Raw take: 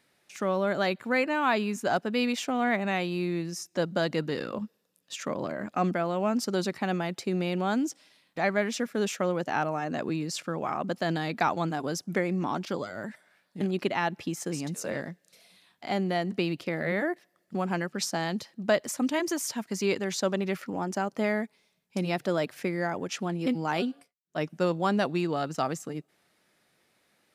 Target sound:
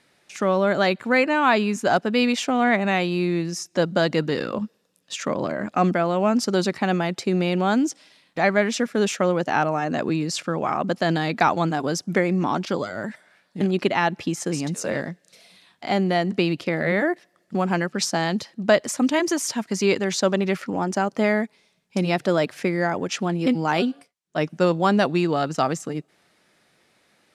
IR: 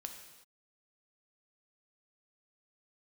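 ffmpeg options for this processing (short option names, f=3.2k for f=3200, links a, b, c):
-af "lowpass=9.7k,volume=7dB"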